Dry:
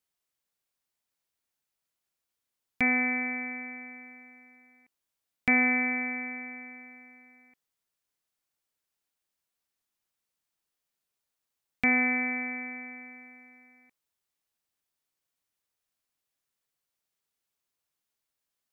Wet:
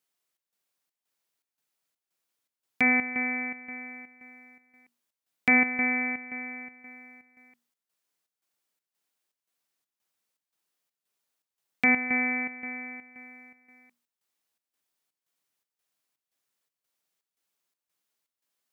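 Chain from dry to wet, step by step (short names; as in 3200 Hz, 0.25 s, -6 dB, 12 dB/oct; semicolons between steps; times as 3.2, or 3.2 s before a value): HPF 140 Hz; notches 60/120/180/240 Hz; chopper 1.9 Hz, depth 65%, duty 70%; gain +3 dB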